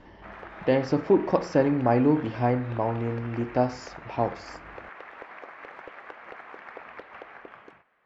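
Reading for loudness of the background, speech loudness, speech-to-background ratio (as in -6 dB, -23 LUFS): -43.5 LUFS, -25.5 LUFS, 18.0 dB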